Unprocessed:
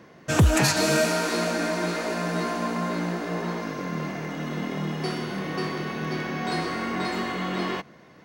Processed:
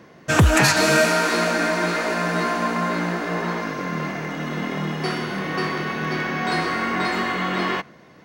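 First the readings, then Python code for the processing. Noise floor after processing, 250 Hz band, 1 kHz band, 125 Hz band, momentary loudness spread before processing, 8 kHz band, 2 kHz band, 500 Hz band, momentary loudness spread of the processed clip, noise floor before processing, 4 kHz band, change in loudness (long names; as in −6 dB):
−48 dBFS, +3.0 dB, +6.5 dB, +2.5 dB, 10 LU, +3.0 dB, +8.0 dB, +4.0 dB, 11 LU, −51 dBFS, +4.5 dB, +5.0 dB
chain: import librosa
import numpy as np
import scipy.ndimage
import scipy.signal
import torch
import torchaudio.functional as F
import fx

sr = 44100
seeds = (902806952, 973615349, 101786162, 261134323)

y = fx.dynamic_eq(x, sr, hz=1600.0, q=0.71, threshold_db=-40.0, ratio=4.0, max_db=6)
y = y * librosa.db_to_amplitude(2.5)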